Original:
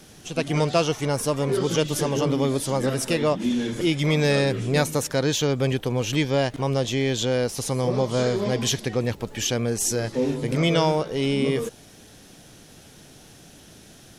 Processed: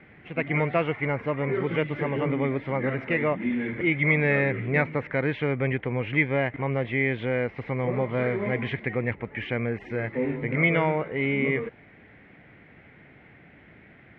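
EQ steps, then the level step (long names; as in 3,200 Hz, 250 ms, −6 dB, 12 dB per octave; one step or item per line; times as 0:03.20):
high-pass filter 50 Hz
low-pass with resonance 2,100 Hz, resonance Q 9.3
high-frequency loss of the air 440 metres
−3.0 dB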